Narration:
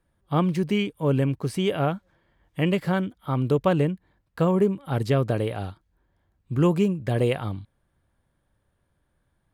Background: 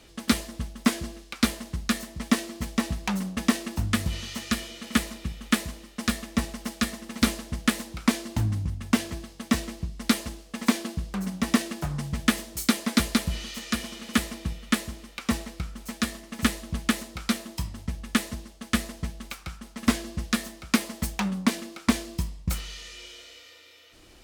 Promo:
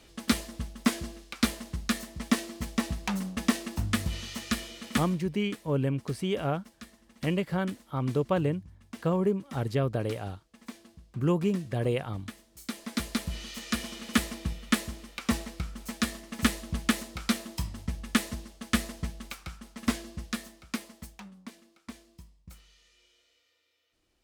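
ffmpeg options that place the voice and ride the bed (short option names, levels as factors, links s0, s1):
-filter_complex "[0:a]adelay=4650,volume=0.531[s0];[1:a]volume=6.68,afade=t=out:st=4.85:d=0.45:silence=0.125893,afade=t=in:st=12.5:d=1.4:silence=0.105925,afade=t=out:st=18.91:d=2.41:silence=0.1[s1];[s0][s1]amix=inputs=2:normalize=0"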